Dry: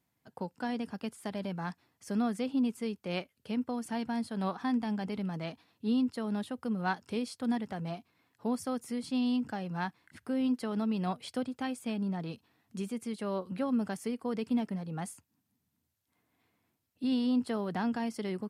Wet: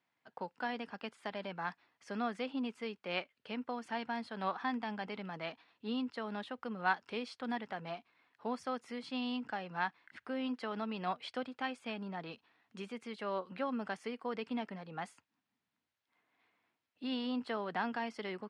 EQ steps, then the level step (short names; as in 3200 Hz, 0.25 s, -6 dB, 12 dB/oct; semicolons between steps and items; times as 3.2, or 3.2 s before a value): HPF 1200 Hz 6 dB/oct; LPF 2900 Hz 12 dB/oct; +5.0 dB